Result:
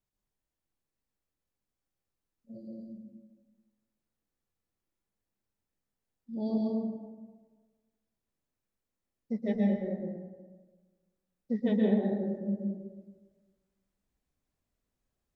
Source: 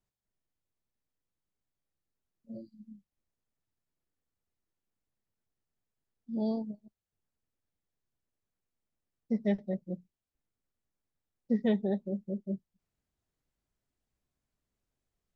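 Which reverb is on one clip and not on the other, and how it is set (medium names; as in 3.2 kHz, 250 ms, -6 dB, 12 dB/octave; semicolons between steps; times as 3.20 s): plate-style reverb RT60 1.4 s, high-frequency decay 0.45×, pre-delay 110 ms, DRR -2.5 dB; trim -3 dB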